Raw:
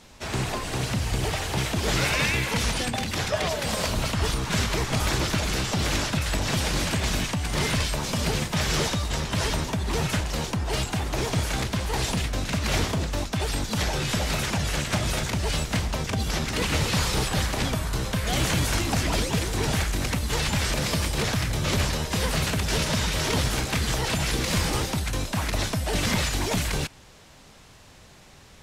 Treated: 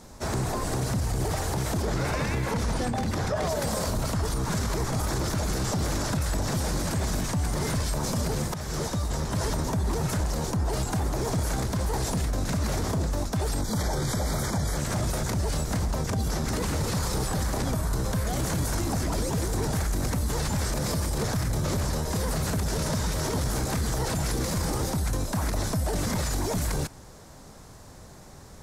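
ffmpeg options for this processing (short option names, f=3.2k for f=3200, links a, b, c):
-filter_complex "[0:a]asettb=1/sr,asplit=3[a][b][c];[a]atrim=end=1.824[d];[b]atrim=start=1.82:end=3.42,asetpts=PTS-STARTPTS,afade=t=in:d=0.004:c=qsin,afade=t=out:st=1.596:d=0.004:c=qsin,aemphasis=mode=reproduction:type=cd[e];[c]atrim=start=3.416[f];[d][e]acrossfade=d=0.004:c1=hsin:c2=qsin[g];[g][f]acrossfade=d=0.004:c1=qsin:c2=hsin,asettb=1/sr,asplit=3[h][i][j];[h]atrim=end=13.624[k];[i]atrim=start=13.62:end=14.77,asetpts=PTS-STARTPTS,afade=t=in:d=0.004:c=qsin,afade=t=out:st=1.146:d=0.004:c=qsin,asuperstop=centerf=2700:order=12:qfactor=4.5[l];[j]atrim=start=14.766[m];[k][l]acrossfade=d=0.004:c1=hsin:c2=qsin[n];[n][m]acrossfade=d=0.004:c1=qsin:c2=hsin,asplit=2[o][p];[o]atrim=end=8.54,asetpts=PTS-STARTPTS,afade=t=out:st=8.536:d=0.004:c=hsin:silence=0.177828[q];[p]atrim=start=8.54,asetpts=PTS-STARTPTS,afade=t=in:d=1.04:silence=0.177828[r];[q][r]concat=n=2:v=0:a=1,equalizer=f=2.8k:w=1.1:g=-14.5,alimiter=level_in=0.5dB:limit=-24dB:level=0:latency=1:release=45,volume=-0.5dB,volume=5dB"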